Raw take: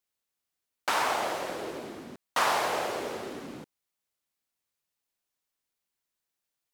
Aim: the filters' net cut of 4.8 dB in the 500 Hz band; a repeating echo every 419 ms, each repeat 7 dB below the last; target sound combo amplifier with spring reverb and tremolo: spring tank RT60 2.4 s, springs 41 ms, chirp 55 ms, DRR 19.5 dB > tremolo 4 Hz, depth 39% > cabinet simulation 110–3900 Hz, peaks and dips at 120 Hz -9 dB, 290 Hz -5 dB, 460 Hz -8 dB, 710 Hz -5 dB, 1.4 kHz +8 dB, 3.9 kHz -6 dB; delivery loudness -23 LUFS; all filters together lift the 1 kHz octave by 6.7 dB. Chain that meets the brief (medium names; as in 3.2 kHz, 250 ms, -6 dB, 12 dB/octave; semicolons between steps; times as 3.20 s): peaking EQ 500 Hz -3.5 dB; peaking EQ 1 kHz +8 dB; feedback delay 419 ms, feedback 45%, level -7 dB; spring tank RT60 2.4 s, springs 41 ms, chirp 55 ms, DRR 19.5 dB; tremolo 4 Hz, depth 39%; cabinet simulation 110–3900 Hz, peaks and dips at 120 Hz -9 dB, 290 Hz -5 dB, 460 Hz -8 dB, 710 Hz -5 dB, 1.4 kHz +8 dB, 3.9 kHz -6 dB; trim +4 dB